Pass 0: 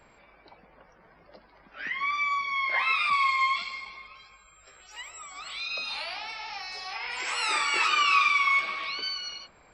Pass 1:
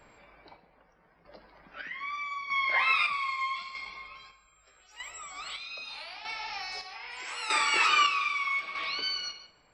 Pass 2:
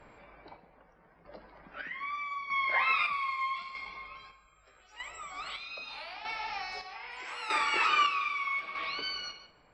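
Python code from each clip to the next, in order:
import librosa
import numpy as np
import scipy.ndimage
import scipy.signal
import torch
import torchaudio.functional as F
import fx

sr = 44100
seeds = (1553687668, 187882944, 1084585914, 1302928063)

y1 = fx.chopper(x, sr, hz=0.8, depth_pct=60, duty_pct=45)
y1 = fx.room_shoebox(y1, sr, seeds[0], volume_m3=400.0, walls='mixed', distance_m=0.41)
y2 = fx.lowpass(y1, sr, hz=2100.0, slope=6)
y2 = fx.rider(y2, sr, range_db=3, speed_s=2.0)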